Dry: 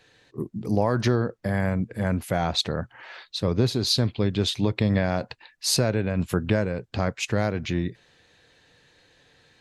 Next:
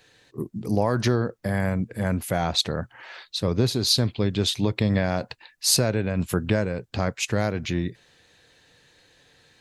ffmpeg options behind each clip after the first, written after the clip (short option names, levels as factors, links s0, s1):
-af "highshelf=f=7000:g=8.5"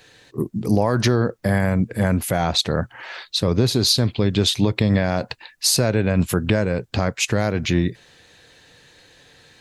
-af "alimiter=limit=0.188:level=0:latency=1:release=141,volume=2.24"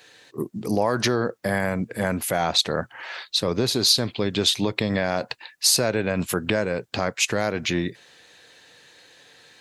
-af "highpass=f=370:p=1"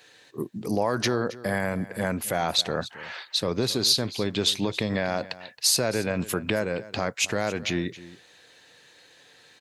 -af "aecho=1:1:271:0.133,volume=0.708"